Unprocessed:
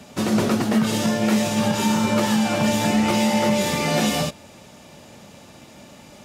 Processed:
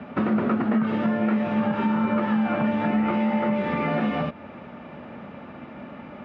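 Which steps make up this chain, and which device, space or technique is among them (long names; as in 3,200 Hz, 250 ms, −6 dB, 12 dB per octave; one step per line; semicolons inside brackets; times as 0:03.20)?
bass amplifier (downward compressor 5 to 1, threshold −27 dBFS, peak gain reduction 11.5 dB; loudspeaker in its box 66–2,300 Hz, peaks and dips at 110 Hz −7 dB, 240 Hz +5 dB, 1,300 Hz +6 dB)
level +4.5 dB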